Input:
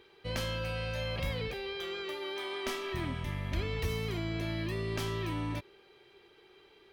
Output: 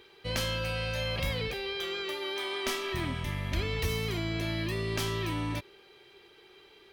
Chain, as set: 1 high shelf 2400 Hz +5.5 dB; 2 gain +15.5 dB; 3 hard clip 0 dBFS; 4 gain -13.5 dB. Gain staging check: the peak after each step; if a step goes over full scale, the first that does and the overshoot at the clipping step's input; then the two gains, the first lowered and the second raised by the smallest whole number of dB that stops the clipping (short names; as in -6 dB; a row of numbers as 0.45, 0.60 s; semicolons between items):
-19.5, -4.0, -4.0, -17.5 dBFS; no overload